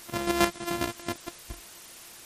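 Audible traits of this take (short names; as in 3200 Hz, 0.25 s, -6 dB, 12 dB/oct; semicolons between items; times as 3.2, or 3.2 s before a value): a buzz of ramps at a fixed pitch in blocks of 128 samples; chopped level 7.4 Hz, depth 60%, duty 30%; a quantiser's noise floor 8-bit, dither triangular; MP3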